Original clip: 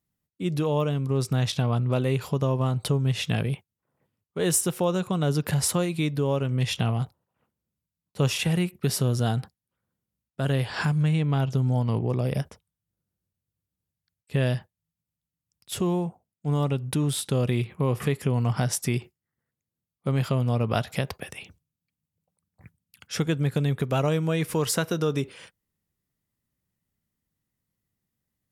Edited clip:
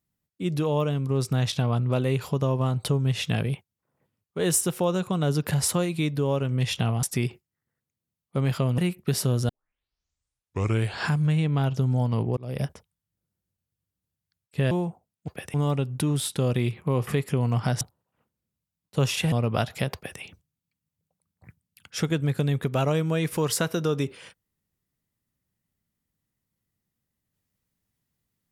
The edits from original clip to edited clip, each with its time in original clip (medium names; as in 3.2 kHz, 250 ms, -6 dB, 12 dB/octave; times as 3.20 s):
7.03–8.54 s: swap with 18.74–20.49 s
9.25 s: tape start 1.54 s
12.13–12.40 s: fade in
14.47–15.90 s: delete
21.12–21.38 s: copy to 16.47 s